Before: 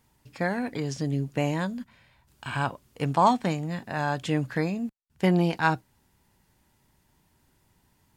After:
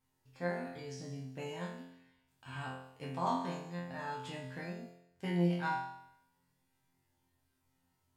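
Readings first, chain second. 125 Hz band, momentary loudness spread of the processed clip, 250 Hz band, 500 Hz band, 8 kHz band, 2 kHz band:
−11.5 dB, 15 LU, −11.5 dB, −11.5 dB, −12.0 dB, −12.0 dB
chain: resonators tuned to a chord F2 fifth, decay 0.79 s
level +4 dB

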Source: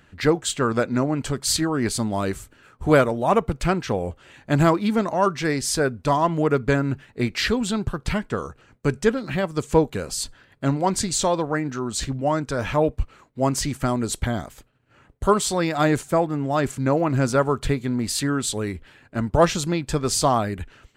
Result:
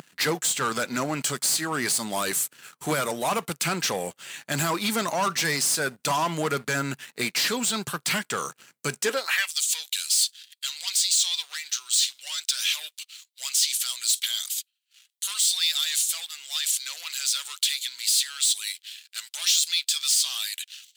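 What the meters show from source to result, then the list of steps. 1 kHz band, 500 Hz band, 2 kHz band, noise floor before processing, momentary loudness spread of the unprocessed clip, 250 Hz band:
−6.5 dB, −11.0 dB, 0.0 dB, −58 dBFS, 9 LU, −12.0 dB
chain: first difference
downward compressor 2 to 1, threshold −32 dBFS, peak gain reduction 7.5 dB
pitch vibrato 1.3 Hz 7.1 cents
brickwall limiter −27 dBFS, peak gain reduction 10 dB
leveller curve on the samples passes 3
high-pass filter sweep 150 Hz → 3,500 Hz, 0:08.96–0:09.52
level +8 dB

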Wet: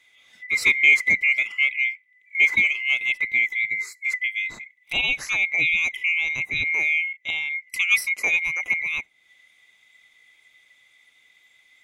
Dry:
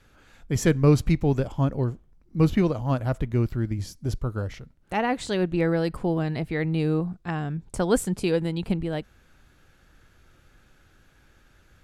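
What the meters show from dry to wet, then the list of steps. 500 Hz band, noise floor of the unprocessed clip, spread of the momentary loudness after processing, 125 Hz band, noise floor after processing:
−19.5 dB, −59 dBFS, 10 LU, −25.5 dB, −61 dBFS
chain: neighbouring bands swapped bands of 2,000 Hz
noise reduction from a noise print of the clip's start 11 dB
one half of a high-frequency compander encoder only
level +1.5 dB

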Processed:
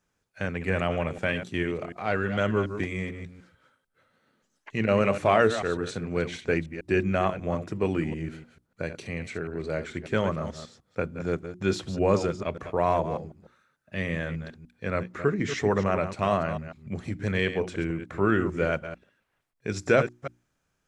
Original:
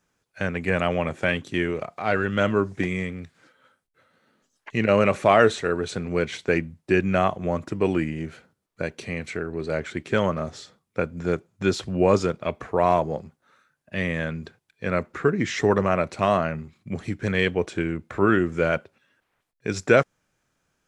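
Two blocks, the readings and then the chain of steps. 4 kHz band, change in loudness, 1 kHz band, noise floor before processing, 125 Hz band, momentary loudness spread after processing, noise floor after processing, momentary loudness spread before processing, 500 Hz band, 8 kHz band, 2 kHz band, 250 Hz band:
−4.0 dB, −3.5 dB, −4.0 dB, −79 dBFS, −2.0 dB, 13 LU, −76 dBFS, 13 LU, −4.0 dB, −4.0 dB, −4.0 dB, −3.5 dB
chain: delay that plays each chunk backwards 148 ms, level −10 dB
low-shelf EQ 150 Hz +5 dB
mains-hum notches 60/120/180/240/300/360 Hz
level −4.5 dB

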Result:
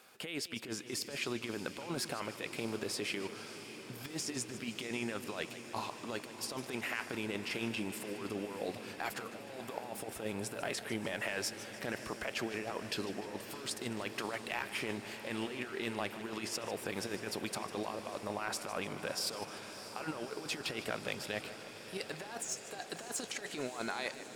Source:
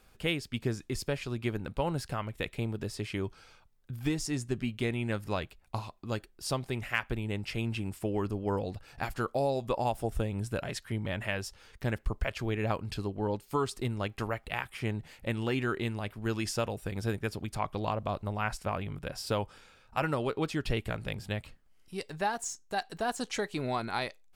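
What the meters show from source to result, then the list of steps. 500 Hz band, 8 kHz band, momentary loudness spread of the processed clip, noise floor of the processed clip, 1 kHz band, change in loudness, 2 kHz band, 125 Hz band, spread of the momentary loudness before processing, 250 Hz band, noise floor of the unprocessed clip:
−6.0 dB, +1.5 dB, 6 LU, −49 dBFS, −7.0 dB, −5.0 dB, −2.5 dB, −15.0 dB, 6 LU, −6.0 dB, −62 dBFS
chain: high-pass filter 260 Hz 12 dB per octave
low-shelf EQ 490 Hz −4 dB
brickwall limiter −23.5 dBFS, peak gain reduction 10.5 dB
compressor whose output falls as the input rises −40 dBFS, ratio −0.5
soft clipping −24 dBFS, distortion −23 dB
on a send: feedback delay with all-pass diffusion 636 ms, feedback 79%, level −13 dB
on the sum: feedback echo with a swinging delay time 151 ms, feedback 56%, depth 142 cents, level −14 dB
level +2 dB

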